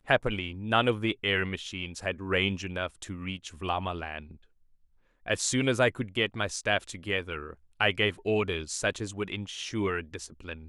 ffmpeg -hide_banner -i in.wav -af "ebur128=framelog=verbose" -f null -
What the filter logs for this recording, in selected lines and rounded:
Integrated loudness:
  I:         -29.7 LUFS
  Threshold: -40.1 LUFS
Loudness range:
  LRA:         4.9 LU
  Threshold: -50.5 LUFS
  LRA low:   -33.4 LUFS
  LRA high:  -28.5 LUFS